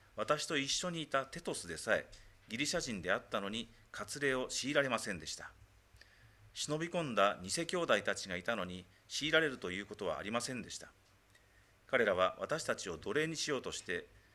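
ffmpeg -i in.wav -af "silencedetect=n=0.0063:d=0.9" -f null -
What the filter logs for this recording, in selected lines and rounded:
silence_start: 10.84
silence_end: 11.89 | silence_duration: 1.05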